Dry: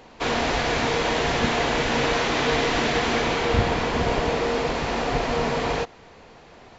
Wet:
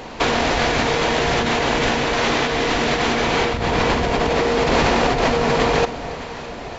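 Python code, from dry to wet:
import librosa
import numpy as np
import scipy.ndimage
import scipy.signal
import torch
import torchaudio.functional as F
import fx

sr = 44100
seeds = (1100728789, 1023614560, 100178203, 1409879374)

y = fx.over_compress(x, sr, threshold_db=-28.0, ratio=-1.0)
y = fx.echo_alternate(y, sr, ms=306, hz=850.0, feedback_pct=69, wet_db=-12.0)
y = F.gain(torch.from_numpy(y), 9.0).numpy()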